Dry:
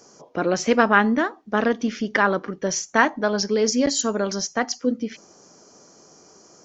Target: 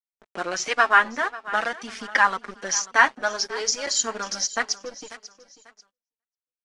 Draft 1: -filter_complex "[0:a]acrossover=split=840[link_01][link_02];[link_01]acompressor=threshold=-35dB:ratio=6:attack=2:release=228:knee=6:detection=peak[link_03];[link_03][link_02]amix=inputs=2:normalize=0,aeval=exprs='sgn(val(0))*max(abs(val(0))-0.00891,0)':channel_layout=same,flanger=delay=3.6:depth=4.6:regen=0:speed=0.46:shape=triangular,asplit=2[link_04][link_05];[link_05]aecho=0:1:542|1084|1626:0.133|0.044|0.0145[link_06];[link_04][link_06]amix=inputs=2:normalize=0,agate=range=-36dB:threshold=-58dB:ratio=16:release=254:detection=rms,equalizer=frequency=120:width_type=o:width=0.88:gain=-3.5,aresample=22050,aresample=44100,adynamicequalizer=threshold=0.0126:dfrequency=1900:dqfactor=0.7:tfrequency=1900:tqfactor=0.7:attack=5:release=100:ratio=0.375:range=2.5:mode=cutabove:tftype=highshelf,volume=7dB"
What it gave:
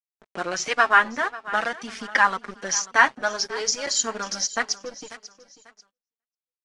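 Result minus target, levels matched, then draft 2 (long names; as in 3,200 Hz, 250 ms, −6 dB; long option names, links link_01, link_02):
125 Hz band +3.0 dB
-filter_complex "[0:a]acrossover=split=840[link_01][link_02];[link_01]acompressor=threshold=-35dB:ratio=6:attack=2:release=228:knee=6:detection=peak[link_03];[link_03][link_02]amix=inputs=2:normalize=0,aeval=exprs='sgn(val(0))*max(abs(val(0))-0.00891,0)':channel_layout=same,flanger=delay=3.6:depth=4.6:regen=0:speed=0.46:shape=triangular,asplit=2[link_04][link_05];[link_05]aecho=0:1:542|1084|1626:0.133|0.044|0.0145[link_06];[link_04][link_06]amix=inputs=2:normalize=0,agate=range=-36dB:threshold=-58dB:ratio=16:release=254:detection=rms,equalizer=frequency=120:width_type=o:width=0.88:gain=-12,aresample=22050,aresample=44100,adynamicequalizer=threshold=0.0126:dfrequency=1900:dqfactor=0.7:tfrequency=1900:tqfactor=0.7:attack=5:release=100:ratio=0.375:range=2.5:mode=cutabove:tftype=highshelf,volume=7dB"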